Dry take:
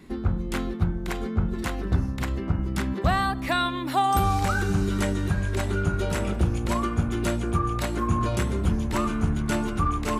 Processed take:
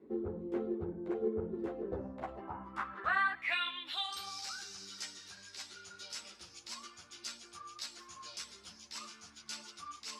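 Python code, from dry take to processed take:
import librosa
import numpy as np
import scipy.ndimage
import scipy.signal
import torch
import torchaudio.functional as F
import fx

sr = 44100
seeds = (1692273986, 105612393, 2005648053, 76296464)

y = fx.filter_sweep_bandpass(x, sr, from_hz=430.0, to_hz=5100.0, start_s=1.78, end_s=4.32, q=4.3)
y = fx.ensemble(y, sr)
y = y * librosa.db_to_amplitude(6.0)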